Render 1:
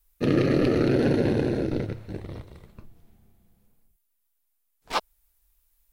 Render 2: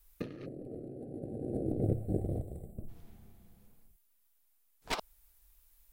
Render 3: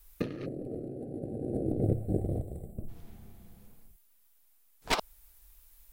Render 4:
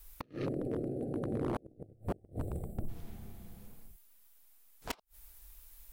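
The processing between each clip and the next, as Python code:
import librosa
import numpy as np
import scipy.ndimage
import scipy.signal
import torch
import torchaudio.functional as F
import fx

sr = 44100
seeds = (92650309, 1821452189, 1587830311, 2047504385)

y1 = fx.over_compress(x, sr, threshold_db=-30.0, ratio=-0.5)
y1 = fx.spec_box(y1, sr, start_s=0.46, length_s=2.42, low_hz=800.0, high_hz=7500.0, gain_db=-26)
y1 = y1 * 10.0 ** (-4.5 / 20.0)
y2 = fx.rider(y1, sr, range_db=4, speed_s=2.0)
y2 = y2 * 10.0 ** (2.5 / 20.0)
y3 = fx.gate_flip(y2, sr, shuts_db=-21.0, range_db=-34)
y3 = 10.0 ** (-30.0 / 20.0) * (np.abs((y3 / 10.0 ** (-30.0 / 20.0) + 3.0) % 4.0 - 2.0) - 1.0)
y3 = y3 * 10.0 ** (3.0 / 20.0)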